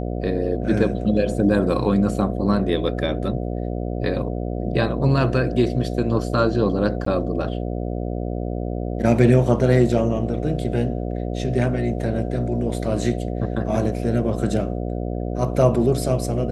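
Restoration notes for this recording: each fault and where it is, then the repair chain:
mains buzz 60 Hz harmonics 12 −26 dBFS
0:07.05–0:07.06: drop-out 14 ms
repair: hum removal 60 Hz, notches 12
repair the gap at 0:07.05, 14 ms

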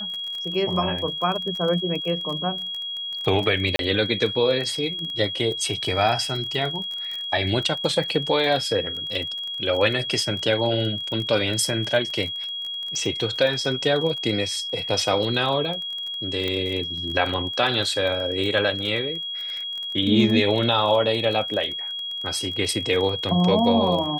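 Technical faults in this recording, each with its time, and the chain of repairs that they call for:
surface crackle 24 per second −28 dBFS
whistle 3,300 Hz −28 dBFS
0:03.76–0:03.79: drop-out 32 ms
0:16.48: click −14 dBFS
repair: click removal
notch filter 3,300 Hz, Q 30
repair the gap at 0:03.76, 32 ms

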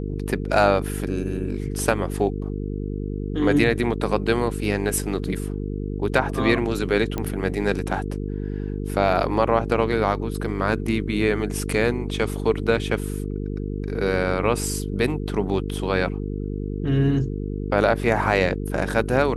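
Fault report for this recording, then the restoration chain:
mains buzz 50 Hz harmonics 9 −28 dBFS
0:07.18: click −13 dBFS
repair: click removal
hum removal 50 Hz, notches 9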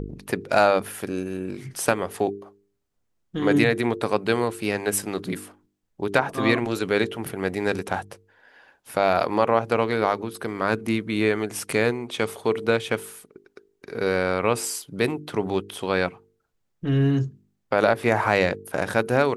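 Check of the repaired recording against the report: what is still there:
none of them is left

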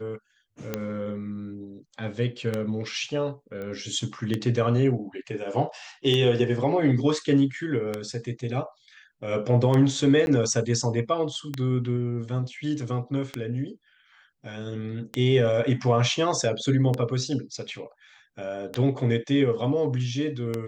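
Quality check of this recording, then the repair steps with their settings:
scratch tick 33 1/3 rpm −13 dBFS
0:03.62: click −25 dBFS
0:10.26–0:10.27: drop-out 11 ms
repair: click removal
repair the gap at 0:10.26, 11 ms

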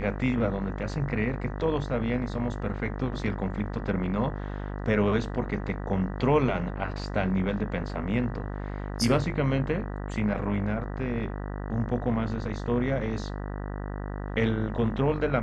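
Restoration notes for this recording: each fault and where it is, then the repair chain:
mains buzz 50 Hz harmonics 39 −34 dBFS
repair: hum removal 50 Hz, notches 39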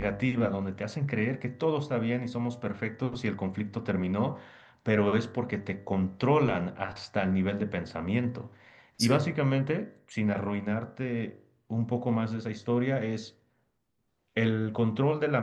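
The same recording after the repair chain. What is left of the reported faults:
none of them is left

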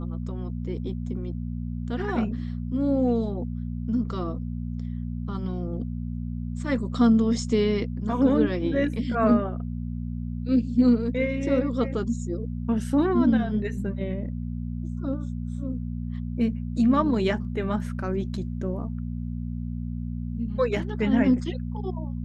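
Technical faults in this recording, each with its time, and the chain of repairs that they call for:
mains hum 60 Hz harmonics 4 −31 dBFS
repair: hum removal 60 Hz, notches 4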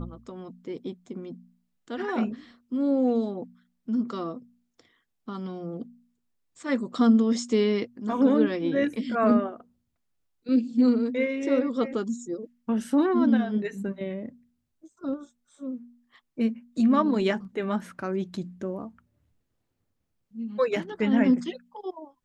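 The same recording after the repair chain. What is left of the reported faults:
none of them is left

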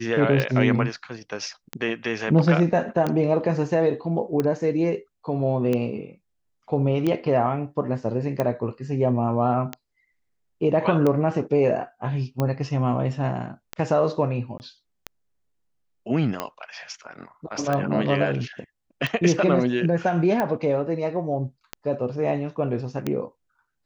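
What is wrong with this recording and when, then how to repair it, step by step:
scratch tick 45 rpm −12 dBFS
0:14.58–0:14.60: drop-out 19 ms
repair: click removal
repair the gap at 0:14.58, 19 ms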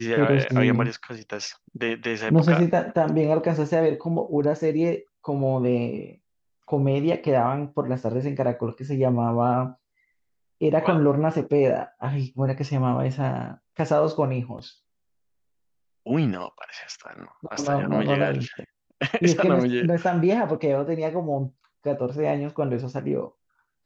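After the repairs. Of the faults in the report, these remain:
none of them is left

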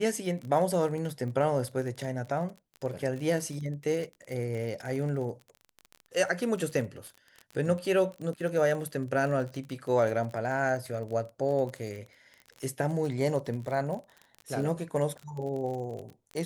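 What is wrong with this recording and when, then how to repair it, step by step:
surface crackle 33 per second −35 dBFS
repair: click removal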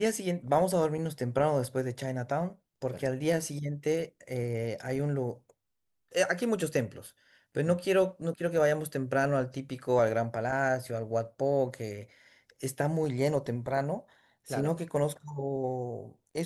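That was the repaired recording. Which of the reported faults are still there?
none of them is left

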